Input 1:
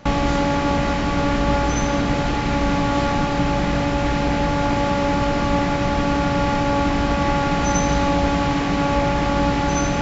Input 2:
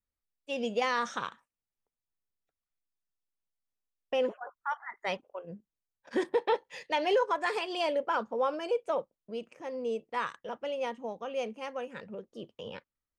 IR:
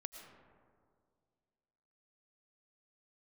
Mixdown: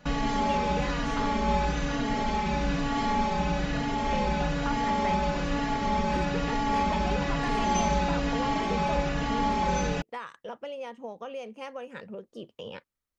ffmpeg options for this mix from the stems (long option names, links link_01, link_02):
-filter_complex "[0:a]aecho=1:1:4.7:0.76,bandreject=frequency=176.1:width_type=h:width=4,bandreject=frequency=352.2:width_type=h:width=4,bandreject=frequency=528.3:width_type=h:width=4,bandreject=frequency=704.4:width_type=h:width=4,bandreject=frequency=880.5:width_type=h:width=4,bandreject=frequency=1056.6:width_type=h:width=4,bandreject=frequency=1232.7:width_type=h:width=4,bandreject=frequency=1408.8:width_type=h:width=4,bandreject=frequency=1584.9:width_type=h:width=4,bandreject=frequency=1761:width_type=h:width=4,bandreject=frequency=1937.1:width_type=h:width=4,bandreject=frequency=2113.2:width_type=h:width=4,bandreject=frequency=2289.3:width_type=h:width=4,bandreject=frequency=2465.4:width_type=h:width=4,bandreject=frequency=2641.5:width_type=h:width=4,bandreject=frequency=2817.6:width_type=h:width=4,bandreject=frequency=2993.7:width_type=h:width=4,bandreject=frequency=3169.8:width_type=h:width=4,bandreject=frequency=3345.9:width_type=h:width=4,bandreject=frequency=3522:width_type=h:width=4,bandreject=frequency=3698.1:width_type=h:width=4,bandreject=frequency=3874.2:width_type=h:width=4,bandreject=frequency=4050.3:width_type=h:width=4,bandreject=frequency=4226.4:width_type=h:width=4,bandreject=frequency=4402.5:width_type=h:width=4,bandreject=frequency=4578.6:width_type=h:width=4,bandreject=frequency=4754.7:width_type=h:width=4,bandreject=frequency=4930.8:width_type=h:width=4,bandreject=frequency=5106.9:width_type=h:width=4,bandreject=frequency=5283:width_type=h:width=4,bandreject=frequency=5459.1:width_type=h:width=4,bandreject=frequency=5635.2:width_type=h:width=4,bandreject=frequency=5811.3:width_type=h:width=4,bandreject=frequency=5987.4:width_type=h:width=4,bandreject=frequency=6163.5:width_type=h:width=4,bandreject=frequency=6339.6:width_type=h:width=4,bandreject=frequency=6515.7:width_type=h:width=4,bandreject=frequency=6691.8:width_type=h:width=4,bandreject=frequency=6867.9:width_type=h:width=4,asplit=2[link_01][link_02];[link_02]adelay=3.6,afreqshift=-1.1[link_03];[link_01][link_03]amix=inputs=2:normalize=1,volume=-6.5dB[link_04];[1:a]acompressor=threshold=-38dB:ratio=6,volume=3dB[link_05];[link_04][link_05]amix=inputs=2:normalize=0"